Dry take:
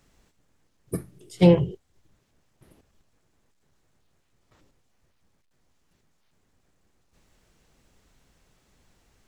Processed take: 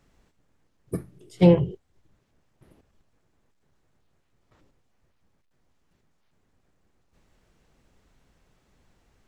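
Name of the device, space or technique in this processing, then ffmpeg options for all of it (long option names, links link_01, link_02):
behind a face mask: -af "highshelf=frequency=3500:gain=-7.5"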